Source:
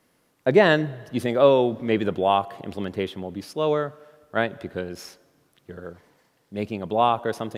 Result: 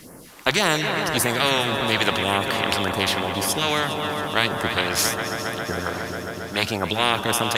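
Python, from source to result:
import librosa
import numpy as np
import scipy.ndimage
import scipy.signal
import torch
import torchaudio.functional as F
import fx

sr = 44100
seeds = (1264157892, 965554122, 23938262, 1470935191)

y = fx.phaser_stages(x, sr, stages=2, low_hz=100.0, high_hz=3500.0, hz=1.8, feedback_pct=25)
y = fx.echo_heads(y, sr, ms=136, heads='second and third', feedback_pct=70, wet_db=-18.5)
y = fx.spectral_comp(y, sr, ratio=4.0)
y = y * 10.0 ** (5.5 / 20.0)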